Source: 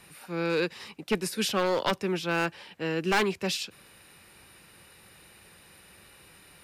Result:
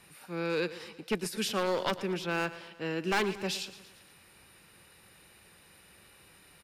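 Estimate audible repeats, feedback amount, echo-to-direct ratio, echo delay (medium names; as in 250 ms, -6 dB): 4, 54%, -14.0 dB, 115 ms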